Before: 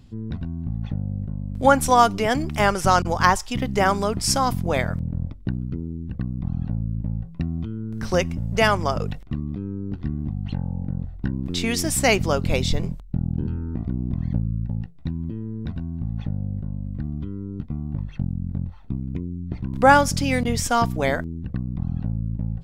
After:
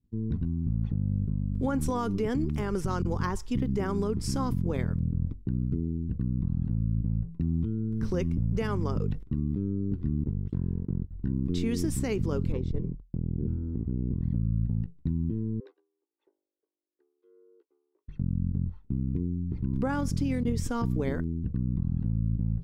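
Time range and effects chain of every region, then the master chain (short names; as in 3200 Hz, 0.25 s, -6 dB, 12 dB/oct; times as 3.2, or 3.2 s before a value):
10.24–11.11 minimum comb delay 0.58 ms + gate -28 dBFS, range -19 dB
12.52–14.21 LPF 1100 Hz 6 dB/oct + tube stage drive 18 dB, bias 0.65
15.6–18.08 steep high-pass 340 Hz 48 dB/oct + frequency shift +64 Hz
whole clip: expander -34 dBFS; EQ curve 440 Hz 0 dB, 650 Hz -18 dB, 1000 Hz -10 dB, 2400 Hz -14 dB; limiter -19.5 dBFS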